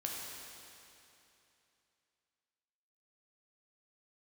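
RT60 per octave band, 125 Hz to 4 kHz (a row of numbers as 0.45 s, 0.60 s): 3.0 s, 2.9 s, 2.9 s, 2.9 s, 2.9 s, 2.8 s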